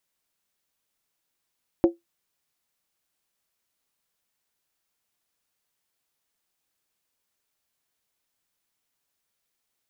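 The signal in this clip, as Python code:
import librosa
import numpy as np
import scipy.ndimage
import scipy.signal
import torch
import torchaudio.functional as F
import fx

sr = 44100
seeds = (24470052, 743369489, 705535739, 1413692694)

y = fx.strike_skin(sr, length_s=0.63, level_db=-10, hz=340.0, decay_s=0.16, tilt_db=9.0, modes=5)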